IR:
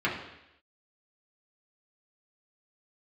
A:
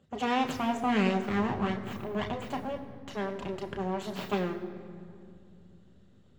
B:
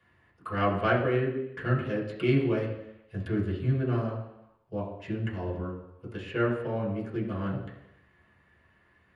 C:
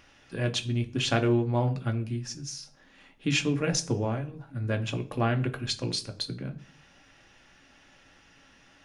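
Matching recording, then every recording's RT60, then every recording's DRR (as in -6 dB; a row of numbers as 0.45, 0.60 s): B; 2.6, 0.85, 0.40 s; 4.0, -6.0, 5.0 dB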